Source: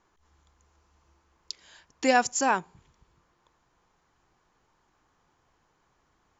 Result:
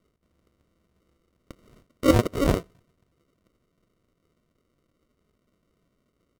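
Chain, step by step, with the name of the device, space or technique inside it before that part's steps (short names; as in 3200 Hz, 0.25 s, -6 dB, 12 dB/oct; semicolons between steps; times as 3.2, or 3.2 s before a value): HPF 160 Hz 6 dB/oct; crushed at another speed (playback speed 1.25×; sample-and-hold 42×; playback speed 0.8×); dynamic EQ 500 Hz, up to +7 dB, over -37 dBFS, Q 0.74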